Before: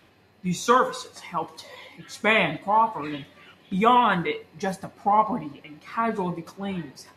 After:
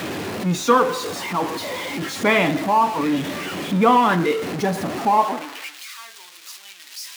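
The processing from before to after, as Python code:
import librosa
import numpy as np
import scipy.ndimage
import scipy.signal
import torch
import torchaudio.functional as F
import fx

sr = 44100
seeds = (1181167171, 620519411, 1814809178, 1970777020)

y = x + 0.5 * 10.0 ** (-24.0 / 20.0) * np.sign(x)
y = fx.peak_eq(y, sr, hz=310.0, db=6.0, octaves=0.96)
y = fx.filter_sweep_highpass(y, sr, from_hz=120.0, to_hz=3500.0, start_s=4.98, end_s=5.85, q=0.77)
y = fx.high_shelf(y, sr, hz=4000.0, db=-6.0)
y = F.gain(torch.from_numpy(y), 1.0).numpy()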